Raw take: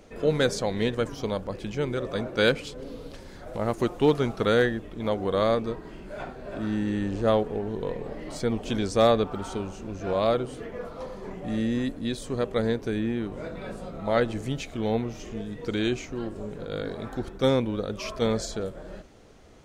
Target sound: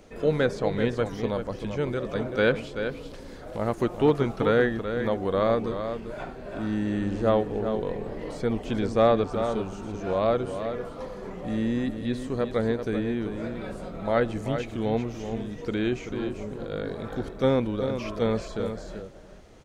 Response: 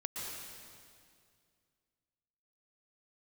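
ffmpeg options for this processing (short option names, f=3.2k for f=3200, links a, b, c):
-filter_complex "[0:a]asplit=2[a][b];[b]adelay=384.8,volume=-8dB,highshelf=f=4k:g=-8.66[c];[a][c]amix=inputs=2:normalize=0,acrossover=split=2900[d][e];[e]acompressor=threshold=-48dB:ratio=4:attack=1:release=60[f];[d][f]amix=inputs=2:normalize=0"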